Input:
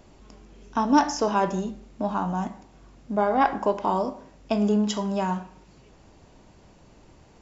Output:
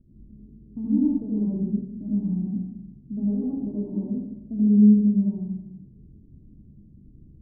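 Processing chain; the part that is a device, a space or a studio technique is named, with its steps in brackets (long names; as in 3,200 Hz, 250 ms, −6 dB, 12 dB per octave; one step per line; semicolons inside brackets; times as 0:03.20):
next room (low-pass filter 260 Hz 24 dB per octave; convolution reverb RT60 0.85 s, pre-delay 72 ms, DRR −6.5 dB)
level −2 dB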